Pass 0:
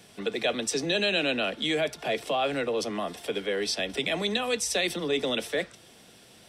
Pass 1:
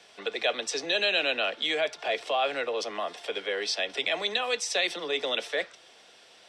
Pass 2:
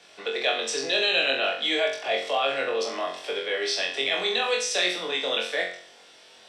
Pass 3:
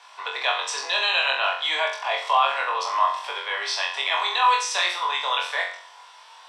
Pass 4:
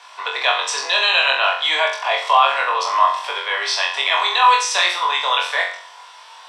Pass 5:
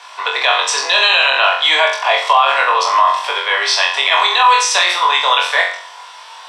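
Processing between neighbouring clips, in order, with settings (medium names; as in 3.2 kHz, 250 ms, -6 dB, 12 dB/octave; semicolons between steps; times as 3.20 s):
three-band isolator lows -20 dB, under 430 Hz, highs -22 dB, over 7.1 kHz; trim +1.5 dB
flutter echo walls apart 3.8 m, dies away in 0.48 s
resonant high-pass 980 Hz, resonance Q 11
band-stop 830 Hz, Q 25; trim +6 dB
peak limiter -8 dBFS, peak gain reduction 6.5 dB; trim +6 dB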